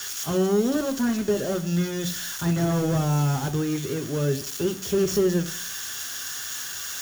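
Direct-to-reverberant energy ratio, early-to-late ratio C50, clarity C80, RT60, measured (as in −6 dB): 8.0 dB, 16.5 dB, 20.0 dB, 0.55 s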